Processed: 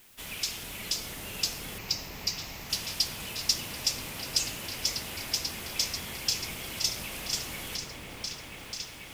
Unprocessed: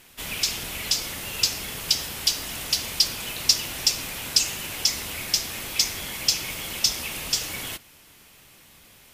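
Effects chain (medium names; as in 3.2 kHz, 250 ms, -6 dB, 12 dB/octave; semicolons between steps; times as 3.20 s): added noise blue -52 dBFS; 1.78–2.70 s: static phaser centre 2.2 kHz, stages 8; delay with an opening low-pass 489 ms, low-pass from 750 Hz, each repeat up 1 oct, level 0 dB; trim -7.5 dB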